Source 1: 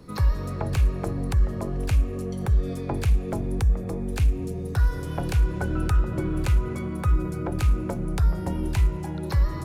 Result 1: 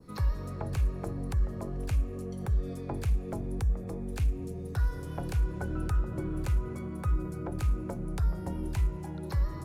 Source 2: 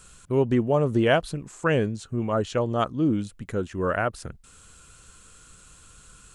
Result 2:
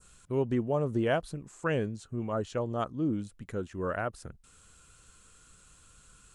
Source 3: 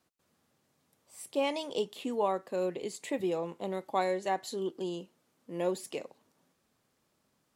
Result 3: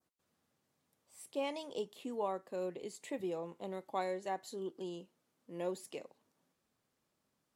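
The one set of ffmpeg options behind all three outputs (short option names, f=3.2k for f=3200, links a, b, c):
-af "adynamicequalizer=threshold=0.00355:dfrequency=3000:dqfactor=0.84:tfrequency=3000:tqfactor=0.84:attack=5:release=100:ratio=0.375:range=2.5:mode=cutabove:tftype=bell,volume=-7dB" -ar 48000 -c:a aac -b:a 192k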